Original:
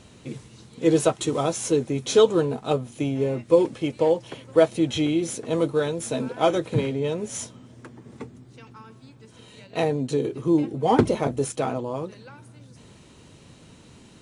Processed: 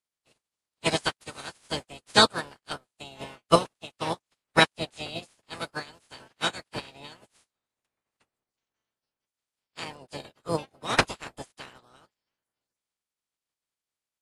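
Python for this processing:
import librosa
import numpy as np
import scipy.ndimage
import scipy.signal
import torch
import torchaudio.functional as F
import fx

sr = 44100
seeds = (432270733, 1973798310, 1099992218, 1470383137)

y = fx.spec_clip(x, sr, under_db=28)
y = fx.formant_shift(y, sr, semitones=3)
y = fx.upward_expand(y, sr, threshold_db=-41.0, expansion=2.5)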